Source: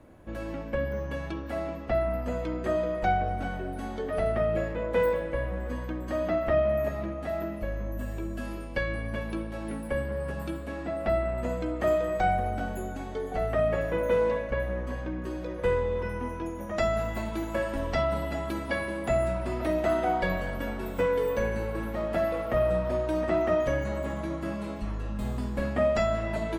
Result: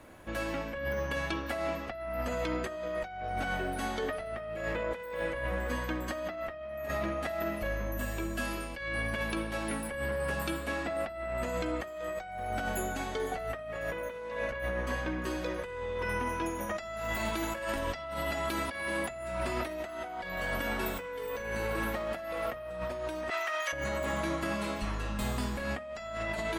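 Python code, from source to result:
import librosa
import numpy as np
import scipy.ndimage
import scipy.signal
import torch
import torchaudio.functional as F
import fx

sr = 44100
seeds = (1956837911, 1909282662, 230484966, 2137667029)

y = fx.highpass(x, sr, hz=1400.0, slope=12, at=(23.3, 23.73))
y = fx.tilt_shelf(y, sr, db=-6.5, hz=790.0)
y = fx.over_compress(y, sr, threshold_db=-35.0, ratio=-1.0)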